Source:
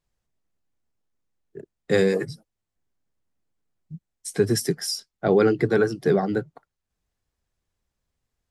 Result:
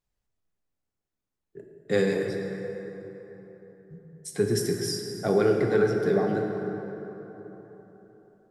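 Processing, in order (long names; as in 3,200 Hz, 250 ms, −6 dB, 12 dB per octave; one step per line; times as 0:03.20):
dense smooth reverb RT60 4 s, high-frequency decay 0.5×, DRR 1.5 dB
level −5.5 dB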